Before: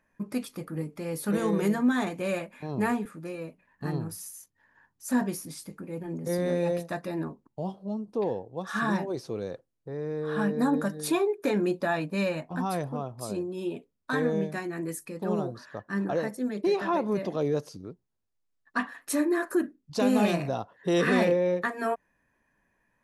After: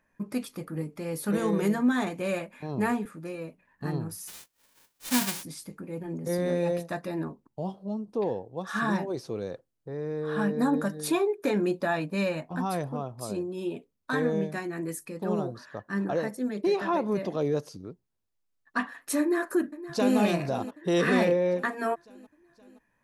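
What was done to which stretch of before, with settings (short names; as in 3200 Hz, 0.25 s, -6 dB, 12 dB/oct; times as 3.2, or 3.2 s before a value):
4.27–5.42 spectral whitening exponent 0.1
19.2–20.18 echo throw 0.52 s, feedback 60%, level -14.5 dB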